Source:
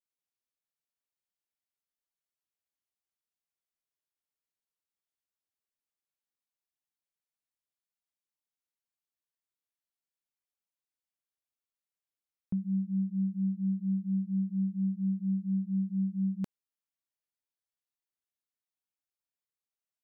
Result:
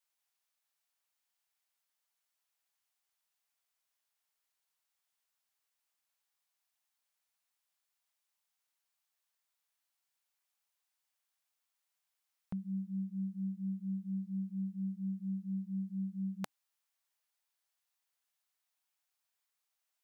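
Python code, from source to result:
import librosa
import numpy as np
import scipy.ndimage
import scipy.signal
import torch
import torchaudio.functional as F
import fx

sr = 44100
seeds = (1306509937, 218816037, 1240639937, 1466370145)

y = fx.curve_eq(x, sr, hz=(130.0, 290.0, 780.0), db=(0, -4, 14))
y = y * 10.0 ** (-5.5 / 20.0)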